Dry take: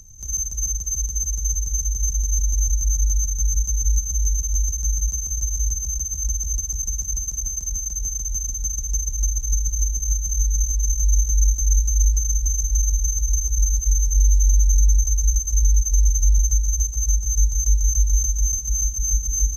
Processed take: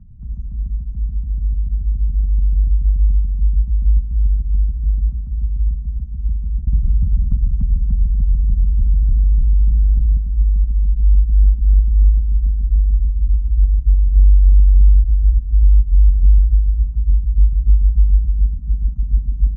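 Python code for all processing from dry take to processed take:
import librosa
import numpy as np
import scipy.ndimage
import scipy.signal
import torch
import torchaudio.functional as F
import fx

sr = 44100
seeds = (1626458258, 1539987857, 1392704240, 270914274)

y = fx.chain(x, sr, fx.peak_eq(hz=440.0, db=-13.5, octaves=1.2),
    fx.env_flatten(amount_pct=100), at=(6.67, 10.17))
y = scipy.signal.sosfilt(scipy.signal.butter(4, 1300.0, 'lowpass', fs=sr, output='sos'), y)
y = fx.low_shelf_res(y, sr, hz=310.0, db=13.0, q=3.0)
y = y * librosa.db_to_amplitude(-7.0)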